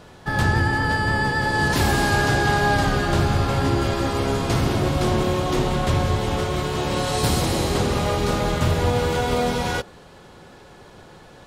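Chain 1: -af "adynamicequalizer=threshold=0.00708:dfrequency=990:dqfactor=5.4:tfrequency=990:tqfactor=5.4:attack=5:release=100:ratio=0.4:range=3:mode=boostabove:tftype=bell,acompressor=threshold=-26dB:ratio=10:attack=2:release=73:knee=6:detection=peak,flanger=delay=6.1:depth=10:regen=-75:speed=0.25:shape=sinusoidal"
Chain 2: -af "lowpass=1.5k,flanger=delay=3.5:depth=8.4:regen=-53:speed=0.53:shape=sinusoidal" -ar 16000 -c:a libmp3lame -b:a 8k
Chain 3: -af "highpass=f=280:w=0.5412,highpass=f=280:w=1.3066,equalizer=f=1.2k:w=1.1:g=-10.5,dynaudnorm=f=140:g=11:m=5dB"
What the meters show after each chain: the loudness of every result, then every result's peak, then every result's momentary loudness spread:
-35.0, -27.0, -21.5 LUFS; -22.5, -10.5, -8.0 dBFS; 16, 4, 5 LU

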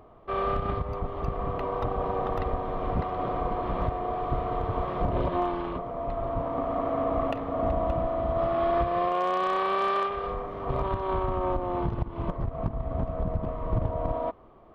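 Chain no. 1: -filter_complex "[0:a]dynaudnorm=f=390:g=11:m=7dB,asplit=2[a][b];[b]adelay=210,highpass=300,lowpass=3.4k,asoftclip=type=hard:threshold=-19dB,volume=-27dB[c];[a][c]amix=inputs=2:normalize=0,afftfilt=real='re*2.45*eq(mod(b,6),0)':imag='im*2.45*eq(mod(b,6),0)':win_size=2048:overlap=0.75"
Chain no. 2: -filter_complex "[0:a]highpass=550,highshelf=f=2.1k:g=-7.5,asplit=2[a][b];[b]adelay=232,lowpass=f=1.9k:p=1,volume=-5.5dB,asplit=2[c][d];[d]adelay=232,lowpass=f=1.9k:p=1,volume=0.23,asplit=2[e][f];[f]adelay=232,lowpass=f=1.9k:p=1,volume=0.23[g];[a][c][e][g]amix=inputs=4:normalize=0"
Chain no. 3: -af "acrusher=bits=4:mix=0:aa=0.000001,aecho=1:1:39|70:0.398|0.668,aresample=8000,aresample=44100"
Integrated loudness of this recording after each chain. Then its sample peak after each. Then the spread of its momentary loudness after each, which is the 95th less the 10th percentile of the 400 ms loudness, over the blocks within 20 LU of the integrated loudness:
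-26.0, -32.5, -26.5 LUFS; -6.0, -16.5, -11.5 dBFS; 10, 10, 6 LU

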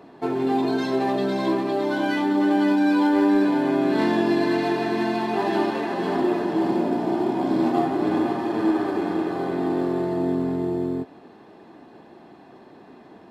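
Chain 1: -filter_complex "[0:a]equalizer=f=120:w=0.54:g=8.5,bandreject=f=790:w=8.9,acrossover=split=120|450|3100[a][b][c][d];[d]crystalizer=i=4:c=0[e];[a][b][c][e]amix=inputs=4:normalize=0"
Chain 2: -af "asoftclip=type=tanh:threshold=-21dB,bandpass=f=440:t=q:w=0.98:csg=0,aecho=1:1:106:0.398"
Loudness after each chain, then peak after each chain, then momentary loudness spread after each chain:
-19.5, -27.5 LUFS; -6.0, -17.5 dBFS; 7, 4 LU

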